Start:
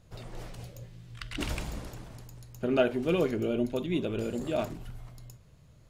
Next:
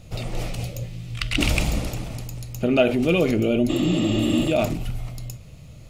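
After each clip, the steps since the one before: in parallel at -1 dB: compressor with a negative ratio -34 dBFS, ratio -1; on the sum: graphic EQ with 31 bands 400 Hz -5 dB, 1 kHz -8 dB, 1.6 kHz -10 dB, 2.5 kHz +5 dB; spectral replace 3.72–4.43 s, 270–7700 Hz after; trim +7 dB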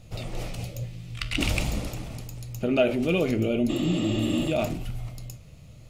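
flange 1.2 Hz, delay 7.8 ms, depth 6.4 ms, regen +79%

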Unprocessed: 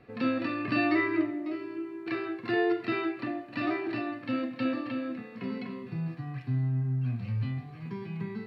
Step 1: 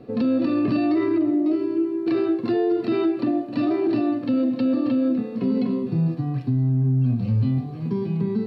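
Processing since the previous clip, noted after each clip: graphic EQ 125/250/500/2000/4000 Hz +3/+9/+7/-11/+3 dB; peak limiter -20.5 dBFS, peak gain reduction 11 dB; trim +6 dB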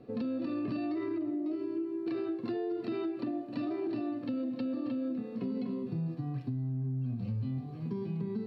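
compression, threshold -22 dBFS, peak gain reduction 5 dB; trim -9 dB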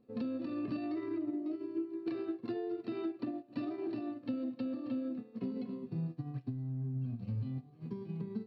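pre-echo 173 ms -21 dB; upward expansion 2.5:1, over -43 dBFS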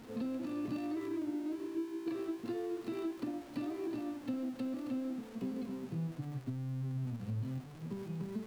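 jump at every zero crossing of -45 dBFS; trim -2 dB

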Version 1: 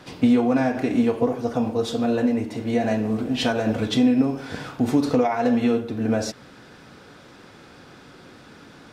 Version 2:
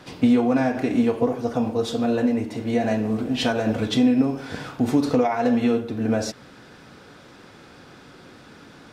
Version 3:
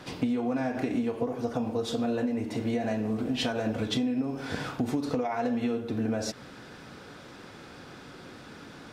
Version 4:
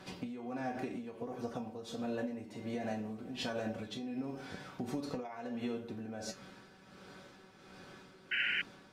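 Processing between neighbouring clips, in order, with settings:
no audible change
compression, threshold -26 dBFS, peak gain reduction 12 dB
feedback comb 190 Hz, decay 0.17 s, harmonics all, mix 80%; tremolo 1.4 Hz, depth 57%; painted sound noise, 8.31–8.62 s, 1.4–3.1 kHz -35 dBFS; trim +1.5 dB

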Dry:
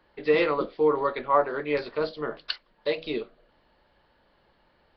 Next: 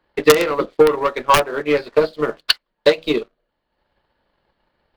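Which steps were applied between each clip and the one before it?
integer overflow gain 12 dB; waveshaping leveller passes 2; transient shaper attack +11 dB, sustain -7 dB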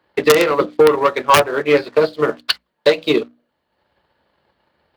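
peak limiter -8 dBFS, peak gain reduction 6.5 dB; high-pass 61 Hz 24 dB/octave; hum notches 60/120/180/240/300 Hz; trim +4 dB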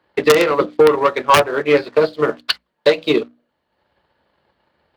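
treble shelf 8.1 kHz -5.5 dB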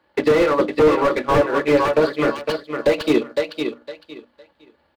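comb 3.5 ms, depth 31%; on a send: feedback delay 508 ms, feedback 21%, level -8 dB; on the sum: slew-rate limiter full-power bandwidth 160 Hz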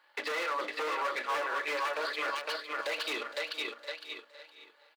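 high-pass 1.1 kHz 12 dB/octave; peak limiter -28.5 dBFS, peak gain reduction 11.5 dB; feedback delay 465 ms, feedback 27%, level -15 dB; trim +2.5 dB

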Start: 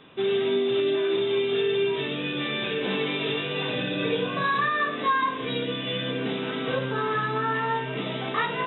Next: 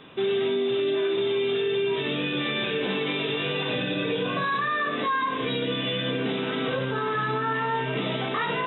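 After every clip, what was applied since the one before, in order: peak limiter -22 dBFS, peak gain reduction 8 dB; trim +3.5 dB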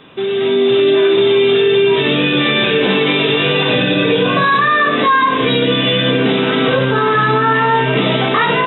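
level rider gain up to 8 dB; trim +5.5 dB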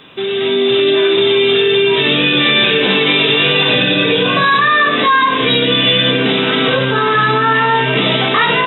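treble shelf 2.2 kHz +9 dB; trim -1.5 dB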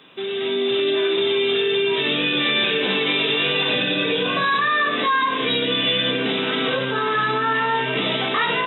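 high-pass 160 Hz 12 dB/octave; trim -8 dB

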